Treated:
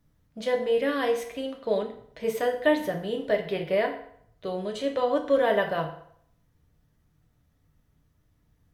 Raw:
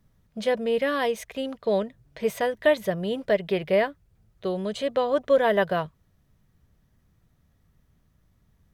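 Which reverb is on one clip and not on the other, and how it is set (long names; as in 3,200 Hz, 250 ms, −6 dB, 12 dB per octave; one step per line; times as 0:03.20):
feedback delay network reverb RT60 0.65 s, low-frequency decay 0.85×, high-frequency decay 0.8×, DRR 2 dB
level −4 dB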